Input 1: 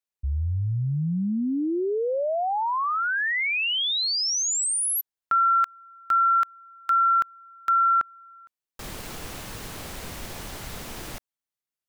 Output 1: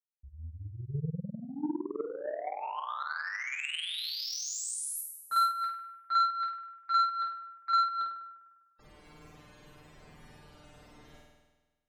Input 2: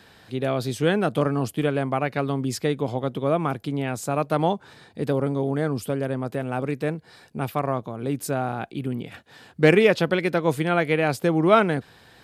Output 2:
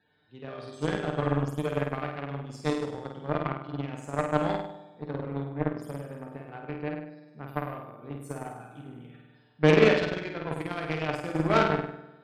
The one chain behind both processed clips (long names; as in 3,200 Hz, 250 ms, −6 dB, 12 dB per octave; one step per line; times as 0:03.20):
tuned comb filter 150 Hz, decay 0.19 s, harmonics all, mix 80%
spectral peaks only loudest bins 64
flutter between parallel walls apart 8.6 metres, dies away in 1.3 s
harmonic generator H 7 −19 dB, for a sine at −7 dBFS
level +1.5 dB